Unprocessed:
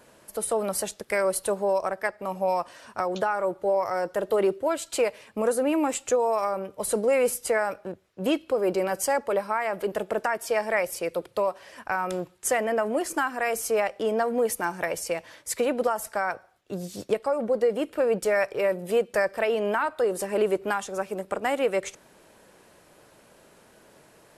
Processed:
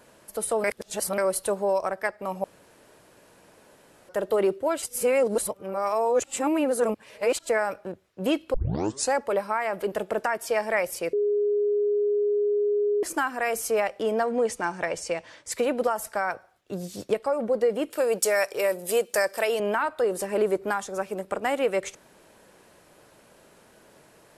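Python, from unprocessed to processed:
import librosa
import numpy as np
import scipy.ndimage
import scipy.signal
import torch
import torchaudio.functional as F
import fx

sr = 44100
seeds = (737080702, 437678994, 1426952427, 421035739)

y = fx.lowpass(x, sr, hz=8400.0, slope=24, at=(14.24, 15.52))
y = fx.bass_treble(y, sr, bass_db=-9, treble_db=13, at=(17.9, 19.6))
y = fx.peak_eq(y, sr, hz=2800.0, db=-7.0, octaves=0.39, at=(20.38, 20.96))
y = fx.edit(y, sr, fx.reverse_span(start_s=0.64, length_s=0.54),
    fx.room_tone_fill(start_s=2.44, length_s=1.65),
    fx.reverse_span(start_s=4.82, length_s=2.67),
    fx.tape_start(start_s=8.54, length_s=0.59),
    fx.bleep(start_s=11.13, length_s=1.9, hz=413.0, db=-20.5), tone=tone)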